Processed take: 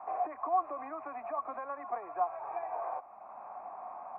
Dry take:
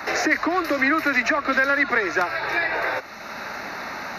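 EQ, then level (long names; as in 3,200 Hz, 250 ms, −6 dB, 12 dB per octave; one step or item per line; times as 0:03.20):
formant resonators in series a
high-frequency loss of the air 76 metres
0.0 dB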